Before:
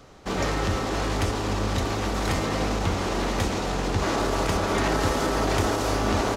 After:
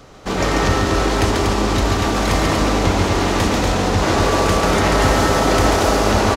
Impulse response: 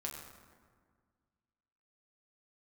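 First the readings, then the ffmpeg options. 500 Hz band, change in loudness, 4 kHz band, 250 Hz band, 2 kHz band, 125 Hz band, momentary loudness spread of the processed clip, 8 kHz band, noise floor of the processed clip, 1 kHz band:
+9.0 dB, +9.0 dB, +9.0 dB, +8.5 dB, +9.0 dB, +8.0 dB, 3 LU, +9.0 dB, -22 dBFS, +9.0 dB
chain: -af "aecho=1:1:139.9|239.1:0.631|0.631,volume=2.11"

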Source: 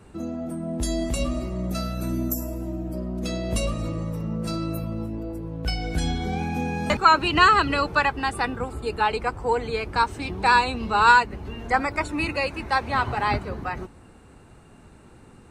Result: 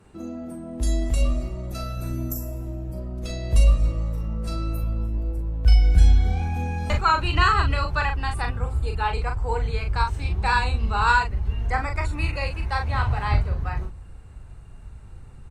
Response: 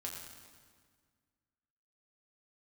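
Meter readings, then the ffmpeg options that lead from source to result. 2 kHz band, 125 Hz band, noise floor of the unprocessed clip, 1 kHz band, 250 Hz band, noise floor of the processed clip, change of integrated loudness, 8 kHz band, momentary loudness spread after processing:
-3.5 dB, +7.0 dB, -50 dBFS, -4.0 dB, -6.0 dB, -42 dBFS, 0.0 dB, -3.5 dB, 13 LU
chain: -filter_complex "[0:a]asplit=2[s0][s1];[s1]adelay=40,volume=0.531[s2];[s0][s2]amix=inputs=2:normalize=0,asubboost=boost=11:cutoff=78,volume=0.596" -ar 48000 -c:a libopus -b:a 64k

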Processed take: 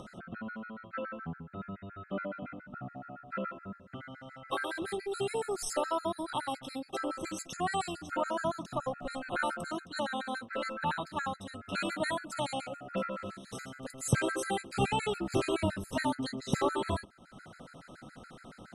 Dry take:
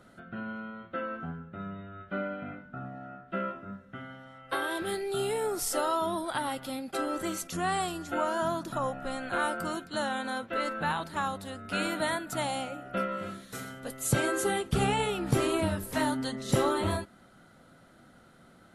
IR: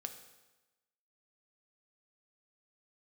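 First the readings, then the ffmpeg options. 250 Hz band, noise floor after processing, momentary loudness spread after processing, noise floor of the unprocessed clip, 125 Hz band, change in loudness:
-3.5 dB, -56 dBFS, 15 LU, -57 dBFS, -3.5 dB, -3.5 dB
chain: -af "acompressor=mode=upward:threshold=0.0141:ratio=2.5,lowpass=f=9600:w=0.5412,lowpass=f=9600:w=1.3066,afftfilt=real='re*gt(sin(2*PI*7.1*pts/sr)*(1-2*mod(floor(b*sr/1024/1300),2)),0)':imag='im*gt(sin(2*PI*7.1*pts/sr)*(1-2*mod(floor(b*sr/1024/1300),2)),0)':win_size=1024:overlap=0.75"

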